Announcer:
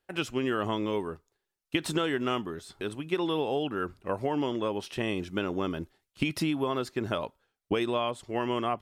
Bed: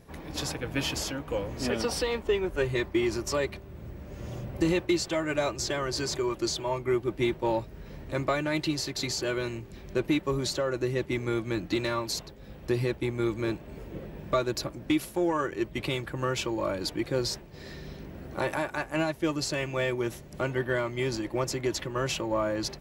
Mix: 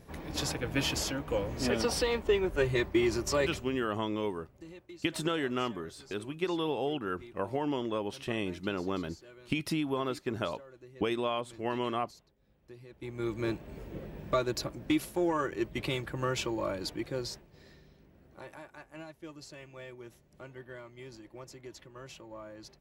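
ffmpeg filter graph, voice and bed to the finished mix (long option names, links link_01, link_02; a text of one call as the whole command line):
ffmpeg -i stem1.wav -i stem2.wav -filter_complex "[0:a]adelay=3300,volume=-3dB[link_01];[1:a]volume=20.5dB,afade=type=out:start_time=3.59:duration=0.33:silence=0.0707946,afade=type=in:start_time=12.9:duration=0.55:silence=0.0891251,afade=type=out:start_time=16.45:duration=1.44:silence=0.16788[link_02];[link_01][link_02]amix=inputs=2:normalize=0" out.wav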